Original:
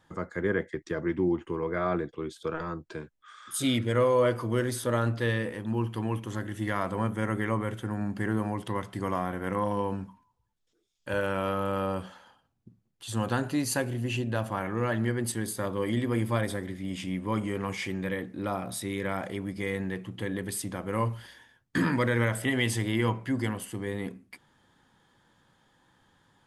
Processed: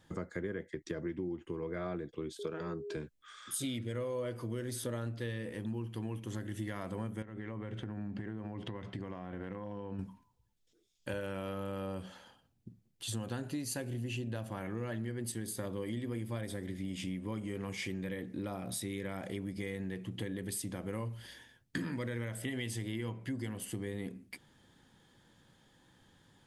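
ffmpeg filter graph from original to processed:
-filter_complex "[0:a]asettb=1/sr,asplit=3[s0][s1][s2];[s0]atrim=end=2.394[s3];[s1]atrim=start=2.39:end=2.97,asetpts=PTS-STARTPTS,afade=t=in:d=0.004:c=qsin,afade=t=out:st=0.576:d=0.004:c=qsin,highpass=110,aeval=exprs='val(0)+0.0112*sin(2*PI*410*n/s)':c=same[s4];[s2]atrim=start=2.966[s5];[s3][s4]acrossfade=d=0.004:c1=hsin:c2=qsin[s6];[s6][s5]acrossfade=d=0.004:c1=qsin:c2=hsin,asettb=1/sr,asplit=3[s7][s8][s9];[s7]atrim=end=7.224[s10];[s8]atrim=start=7.22:end=9.99,asetpts=PTS-STARTPTS,afade=t=in:d=0.004:c=qsin,afade=t=out:st=2.766:d=0.004:c=qsin,lowpass=3300,acompressor=threshold=0.0158:ratio=12:attack=3.2:release=140:knee=1:detection=peak[s11];[s9]atrim=start=9.986[s12];[s10][s11]acrossfade=d=0.004:c1=hsin:c2=qsin[s13];[s13][s12]acrossfade=d=0.004:c1=qsin:c2=hsin,equalizer=f=1100:w=0.95:g=-8,acompressor=threshold=0.0126:ratio=6,volume=1.33"

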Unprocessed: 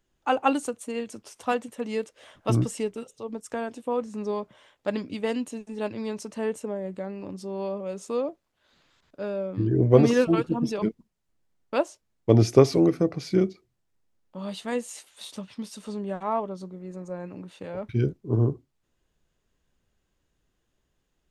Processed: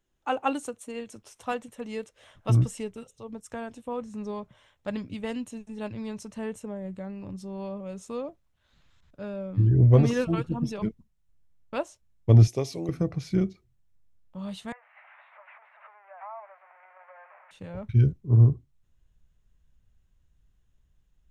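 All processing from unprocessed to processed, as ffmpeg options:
-filter_complex "[0:a]asettb=1/sr,asplit=3[s0][s1][s2];[s0]atrim=end=12.474[s3];[s1]atrim=start=12.47:end=12.89,asetpts=PTS-STARTPTS,afade=t=in:d=0.004:c=qsin,afade=t=out:st=0.416:d=0.004:c=qsin,highpass=f=700:p=1,equalizer=f=1400:t=o:w=0.87:g=-14[s4];[s2]atrim=start=12.886[s5];[s3][s4]acrossfade=d=0.004:c1=hsin:c2=qsin[s6];[s6][s5]acrossfade=d=0.004:c1=qsin:c2=hsin,asettb=1/sr,asplit=3[s7][s8][s9];[s7]atrim=end=14.724[s10];[s8]atrim=start=14.72:end=17.51,asetpts=PTS-STARTPTS,afade=t=in:d=0.004:c=qsin,afade=t=out:st=2.786:d=0.004:c=qsin,aeval=exprs='val(0)+0.5*0.0168*sgn(val(0))':c=same,acompressor=threshold=0.0355:ratio=10:attack=3.2:release=140:knee=1:detection=peak,asuperpass=centerf=1200:order=12:qfactor=0.71[s11];[s9]atrim=start=17.506[s12];[s10][s11]acrossfade=d=0.004:c1=hsin:c2=qsin[s13];[s13][s12]acrossfade=d=0.004:c1=qsin:c2=hsin,bandreject=f=4700:w=12,asubboost=boost=6.5:cutoff=130,volume=0.631"

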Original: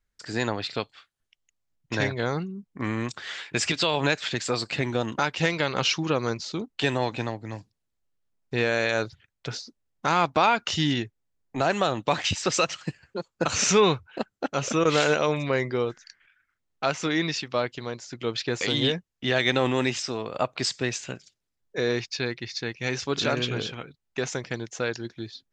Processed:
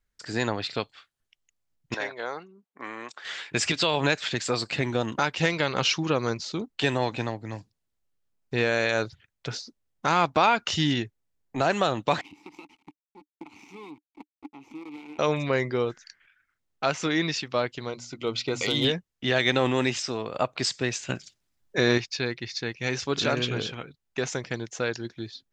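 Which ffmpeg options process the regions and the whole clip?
-filter_complex "[0:a]asettb=1/sr,asplit=3[s0][s1][s2];[s0]atrim=end=1.944[s3];[s1]atrim=start=1.94:end=3.25,asetpts=PTS-STARTPTS,afade=t=in:d=0.004:c=qsin,afade=t=out:st=1.306:d=0.004:c=qsin,highpass=610,highshelf=f=2200:g=-9.5[s4];[s2]atrim=start=3.246[s5];[s3][s4]acrossfade=d=0.004:c1=hsin:c2=qsin[s6];[s6][s5]acrossfade=d=0.004:c1=qsin:c2=hsin,asettb=1/sr,asplit=3[s7][s8][s9];[s7]atrim=end=12.214[s10];[s8]atrim=start=12.21:end=15.19,asetpts=PTS-STARTPTS,afade=t=in:d=0.004:c=qsin,afade=t=out:st=2.976:d=0.004:c=qsin,acrusher=bits=4:dc=4:mix=0:aa=0.000001,acompressor=threshold=0.0562:ratio=4:attack=3.2:release=140:knee=1:detection=peak,asplit=3[s11][s12][s13];[s11]bandpass=f=300:t=q:w=8,volume=1[s14];[s12]bandpass=f=870:t=q:w=8,volume=0.501[s15];[s13]bandpass=f=2240:t=q:w=8,volume=0.355[s16];[s14][s15][s16]amix=inputs=3:normalize=0[s17];[s9]atrim=start=15.186[s18];[s10][s17]acrossfade=d=0.004:c1=hsin:c2=qsin[s19];[s19][s18]acrossfade=d=0.004:c1=qsin:c2=hsin,asettb=1/sr,asplit=3[s20][s21][s22];[s20]atrim=end=17.894[s23];[s21]atrim=start=17.89:end=18.85,asetpts=PTS-STARTPTS,afade=t=in:d=0.004:c=qsin,afade=t=out:st=0.956:d=0.004:c=qsin,asoftclip=type=hard:threshold=0.178,asuperstop=centerf=1700:order=8:qfactor=5.3,bandreject=f=60:t=h:w=6,bandreject=f=120:t=h:w=6,bandreject=f=180:t=h:w=6,bandreject=f=240:t=h:w=6,bandreject=f=300:t=h:w=6[s24];[s22]atrim=start=18.846[s25];[s23][s24]acrossfade=d=0.004:c1=hsin:c2=qsin[s26];[s26][s25]acrossfade=d=0.004:c1=qsin:c2=hsin,asettb=1/sr,asplit=3[s27][s28][s29];[s27]atrim=end=21.094[s30];[s28]atrim=start=21.09:end=21.98,asetpts=PTS-STARTPTS,afade=t=in:d=0.004:c=qsin,afade=t=out:st=0.886:d=0.004:c=qsin,equalizer=f=460:t=o:w=0.24:g=-9,acontrast=63[s31];[s29]atrim=start=21.976[s32];[s30][s31]acrossfade=d=0.004:c1=hsin:c2=qsin[s33];[s33][s32]acrossfade=d=0.004:c1=qsin:c2=hsin"

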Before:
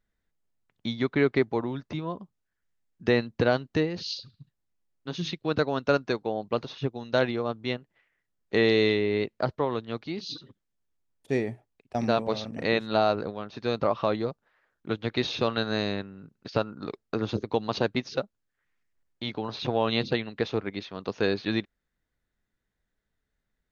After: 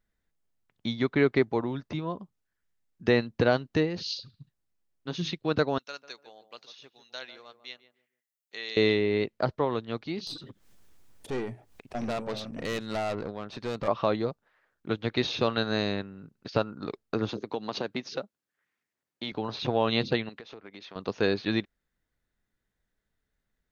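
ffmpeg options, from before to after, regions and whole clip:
-filter_complex "[0:a]asettb=1/sr,asplit=3[s0][s1][s2];[s0]atrim=end=5.784[s3];[s1]atrim=start=5.78:end=8.77,asetpts=PTS-STARTPTS,afade=t=in:d=0.004:c=qsin,afade=t=out:st=2.986:d=0.004:c=qsin,aderivative,asplit=2[s4][s5];[s5]adelay=146,lowpass=f=850:p=1,volume=0.316,asplit=2[s6][s7];[s7]adelay=146,lowpass=f=850:p=1,volume=0.31,asplit=2[s8][s9];[s9]adelay=146,lowpass=f=850:p=1,volume=0.31[s10];[s4][s6][s8][s10]amix=inputs=4:normalize=0,atrim=end_sample=131859[s11];[s2]atrim=start=8.766[s12];[s3][s11]acrossfade=d=0.004:c1=hsin:c2=qsin[s13];[s13][s12]acrossfade=d=0.004:c1=qsin:c2=hsin,asettb=1/sr,asplit=3[s14][s15][s16];[s14]atrim=end=10.274[s17];[s15]atrim=start=10.27:end=13.88,asetpts=PTS-STARTPTS,afade=t=in:d=0.004:c=qsin,afade=t=out:st=3.606:d=0.004:c=qsin,acompressor=mode=upward:threshold=0.0224:ratio=2.5:attack=3.2:release=140:knee=2.83:detection=peak,aeval=exprs='(tanh(22.4*val(0)+0.4)-tanh(0.4))/22.4':c=same[s18];[s16]atrim=start=13.876[s19];[s17][s18]acrossfade=d=0.004:c1=hsin:c2=qsin[s20];[s20][s19]acrossfade=d=0.004:c1=qsin:c2=hsin,asettb=1/sr,asplit=3[s21][s22][s23];[s21]atrim=end=17.294[s24];[s22]atrim=start=17.29:end=19.32,asetpts=PTS-STARTPTS,afade=t=in:d=0.004:c=qsin,afade=t=out:st=2.026:d=0.004:c=qsin,acompressor=threshold=0.0398:ratio=2.5:attack=3.2:release=140:knee=1:detection=peak,highpass=170[s25];[s23]atrim=start=19.316[s26];[s24][s25]acrossfade=d=0.004:c1=hsin:c2=qsin[s27];[s27][s26]acrossfade=d=0.004:c1=qsin:c2=hsin,asettb=1/sr,asplit=3[s28][s29][s30];[s28]atrim=end=20.294[s31];[s29]atrim=start=20.29:end=20.96,asetpts=PTS-STARTPTS,afade=t=in:d=0.004:c=qsin,afade=t=out:st=0.666:d=0.004:c=qsin,highpass=f=300:p=1,acompressor=threshold=0.01:ratio=20:attack=3.2:release=140:knee=1:detection=peak[s32];[s30]atrim=start=20.956[s33];[s31][s32]acrossfade=d=0.004:c1=hsin:c2=qsin[s34];[s34][s33]acrossfade=d=0.004:c1=qsin:c2=hsin"

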